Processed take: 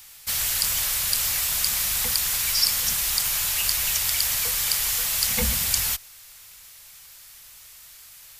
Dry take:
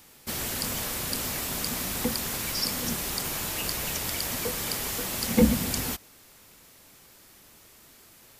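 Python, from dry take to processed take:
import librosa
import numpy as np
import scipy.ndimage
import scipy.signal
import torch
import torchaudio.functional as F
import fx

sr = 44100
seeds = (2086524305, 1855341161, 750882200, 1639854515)

y = fx.tone_stack(x, sr, knobs='10-0-10')
y = y * 10.0 ** (9.0 / 20.0)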